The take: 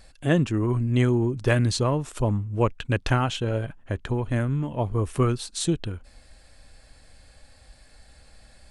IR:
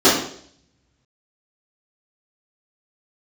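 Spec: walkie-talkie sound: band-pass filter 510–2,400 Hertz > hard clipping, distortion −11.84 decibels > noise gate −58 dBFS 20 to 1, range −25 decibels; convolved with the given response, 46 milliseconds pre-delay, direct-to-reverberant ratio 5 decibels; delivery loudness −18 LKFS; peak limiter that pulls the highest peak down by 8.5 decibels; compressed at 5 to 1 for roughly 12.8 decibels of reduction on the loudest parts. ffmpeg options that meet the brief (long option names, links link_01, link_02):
-filter_complex "[0:a]acompressor=threshold=-31dB:ratio=5,alimiter=level_in=2dB:limit=-24dB:level=0:latency=1,volume=-2dB,asplit=2[link_01][link_02];[1:a]atrim=start_sample=2205,adelay=46[link_03];[link_02][link_03]afir=irnorm=-1:irlink=0,volume=-30.5dB[link_04];[link_01][link_04]amix=inputs=2:normalize=0,highpass=510,lowpass=2400,asoftclip=type=hard:threshold=-37.5dB,agate=range=-25dB:threshold=-58dB:ratio=20,volume=26.5dB"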